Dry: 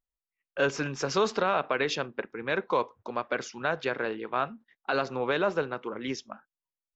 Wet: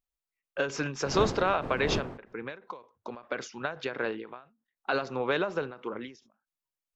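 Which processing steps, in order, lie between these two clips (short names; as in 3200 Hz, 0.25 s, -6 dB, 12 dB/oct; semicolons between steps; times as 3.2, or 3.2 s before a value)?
1.03–2.33 wind noise 520 Hz -33 dBFS; ending taper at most 150 dB/s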